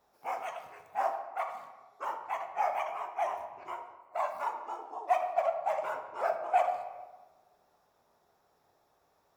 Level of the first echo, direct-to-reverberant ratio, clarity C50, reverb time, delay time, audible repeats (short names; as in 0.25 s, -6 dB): none, 5.0 dB, 7.5 dB, 1.3 s, none, none